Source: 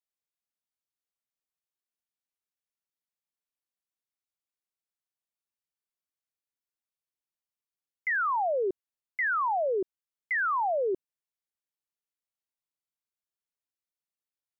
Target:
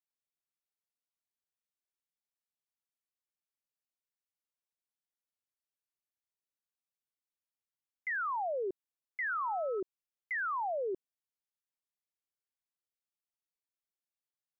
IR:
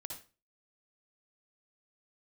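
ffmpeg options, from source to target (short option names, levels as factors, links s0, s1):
-filter_complex "[0:a]asettb=1/sr,asplit=3[s0][s1][s2];[s0]atrim=end=9.294[s3];[s1]atrim=start=9.29:end=9.8,asetpts=PTS-STARTPTS,afade=t=in:d=0.004:c=qsin,afade=t=out:st=0.506:d=0.004:c=qsin,aeval=exprs='val(0)+0.0112*sin(2*PI*1300*n/s)':c=same[s4];[s2]atrim=start=9.796[s5];[s3][s4]acrossfade=d=0.004:c1=hsin:c2=qsin[s6];[s6][s5]acrossfade=d=0.004:c1=qsin:c2=hsin,volume=0.447"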